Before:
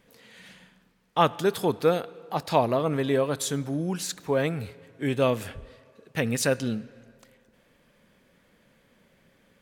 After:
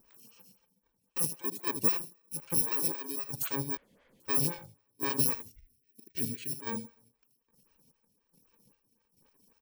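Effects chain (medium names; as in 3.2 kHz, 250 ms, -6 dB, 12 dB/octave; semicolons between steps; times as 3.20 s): bit-reversed sample order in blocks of 64 samples; 2.59–3.24 s: high-pass 270 Hz 12 dB/octave; reverb removal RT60 0.92 s; 5.35–6.52 s: Chebyshev band-stop 400–1900 Hz, order 3; peak limiter -16 dBFS, peak gain reduction 9 dB; square tremolo 1.2 Hz, depth 60%, duty 50%; feedback delay 78 ms, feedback 18%, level -11 dB; 3.77–4.20 s: room tone; lamp-driven phase shifter 3.8 Hz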